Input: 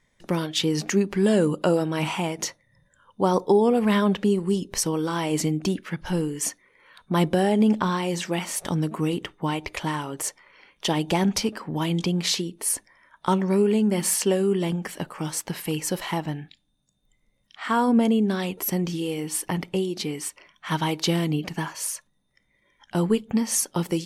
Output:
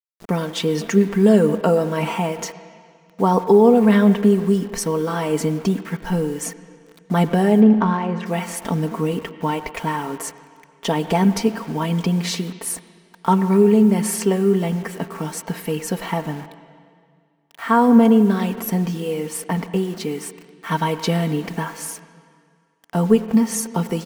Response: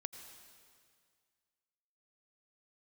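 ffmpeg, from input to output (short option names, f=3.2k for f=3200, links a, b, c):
-filter_complex "[0:a]aecho=1:1:4.4:0.65,acrusher=bits=6:mix=0:aa=0.000001,asplit=3[a][b][c];[a]afade=t=out:st=7.6:d=0.02[d];[b]adynamicsmooth=sensitivity=1:basefreq=1.8k,afade=t=in:st=7.6:d=0.02,afade=t=out:st=8.25:d=0.02[e];[c]afade=t=in:st=8.25:d=0.02[f];[d][e][f]amix=inputs=3:normalize=0,asplit=2[g][h];[1:a]atrim=start_sample=2205,lowpass=2.3k,lowshelf=f=73:g=-9.5[i];[h][i]afir=irnorm=-1:irlink=0,volume=4dB[j];[g][j]amix=inputs=2:normalize=0,volume=-2.5dB"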